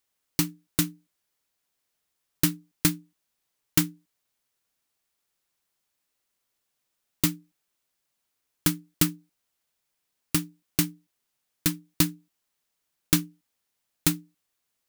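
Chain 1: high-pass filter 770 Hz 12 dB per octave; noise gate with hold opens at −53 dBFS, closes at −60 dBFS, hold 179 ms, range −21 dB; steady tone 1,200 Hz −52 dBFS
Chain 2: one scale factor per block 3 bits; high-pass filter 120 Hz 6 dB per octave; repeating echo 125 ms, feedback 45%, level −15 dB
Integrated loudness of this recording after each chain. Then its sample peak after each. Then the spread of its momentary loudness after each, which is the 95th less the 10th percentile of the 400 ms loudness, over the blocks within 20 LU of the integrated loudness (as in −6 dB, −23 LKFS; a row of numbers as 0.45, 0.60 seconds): −29.5, −27.0 LKFS; −5.5, −4.0 dBFS; 4, 15 LU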